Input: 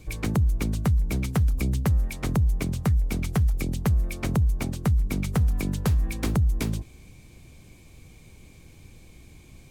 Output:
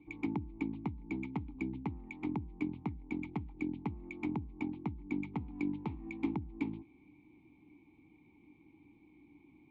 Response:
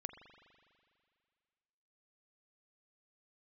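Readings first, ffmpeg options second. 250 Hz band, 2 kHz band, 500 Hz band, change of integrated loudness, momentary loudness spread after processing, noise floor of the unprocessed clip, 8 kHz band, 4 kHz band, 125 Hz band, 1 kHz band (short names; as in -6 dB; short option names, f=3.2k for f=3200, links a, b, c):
-7.0 dB, -10.0 dB, -11.5 dB, -14.0 dB, 5 LU, -50 dBFS, under -30 dB, under -20 dB, -20.0 dB, -9.5 dB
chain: -filter_complex "[0:a]asplit=3[a][b][c];[a]bandpass=f=300:t=q:w=8,volume=0dB[d];[b]bandpass=f=870:t=q:w=8,volume=-6dB[e];[c]bandpass=f=2.24k:t=q:w=8,volume=-9dB[f];[d][e][f]amix=inputs=3:normalize=0,highshelf=f=4.9k:t=q:w=3:g=-8.5,adynamicsmooth=sensitivity=4:basefreq=2.1k,volume=3.5dB"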